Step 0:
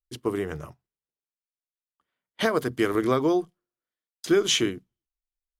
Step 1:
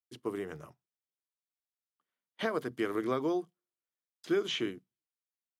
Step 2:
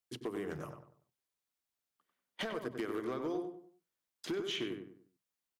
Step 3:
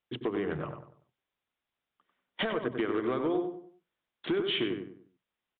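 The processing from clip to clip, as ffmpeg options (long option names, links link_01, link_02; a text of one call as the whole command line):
ffmpeg -i in.wav -filter_complex "[0:a]acrossover=split=3900[link_01][link_02];[link_02]acompressor=threshold=-45dB:ratio=4:attack=1:release=60[link_03];[link_01][link_03]amix=inputs=2:normalize=0,highpass=140,volume=-8.5dB" out.wav
ffmpeg -i in.wav -filter_complex "[0:a]acompressor=threshold=-39dB:ratio=8,volume=35.5dB,asoftclip=hard,volume=-35.5dB,asplit=2[link_01][link_02];[link_02]adelay=96,lowpass=frequency=1700:poles=1,volume=-5dB,asplit=2[link_03][link_04];[link_04]adelay=96,lowpass=frequency=1700:poles=1,volume=0.36,asplit=2[link_05][link_06];[link_06]adelay=96,lowpass=frequency=1700:poles=1,volume=0.36,asplit=2[link_07][link_08];[link_08]adelay=96,lowpass=frequency=1700:poles=1,volume=0.36[link_09];[link_03][link_05][link_07][link_09]amix=inputs=4:normalize=0[link_10];[link_01][link_10]amix=inputs=2:normalize=0,volume=4.5dB" out.wav
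ffmpeg -i in.wav -af "aresample=8000,aresample=44100,volume=7.5dB" out.wav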